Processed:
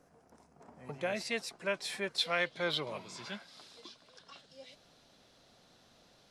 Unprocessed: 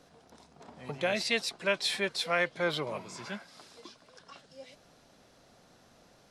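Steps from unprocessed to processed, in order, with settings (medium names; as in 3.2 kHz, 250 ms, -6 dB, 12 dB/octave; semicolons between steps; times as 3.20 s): peaking EQ 3.7 kHz -14 dB 0.88 oct, from 0.89 s -6.5 dB, from 2.18 s +7.5 dB; trim -4.5 dB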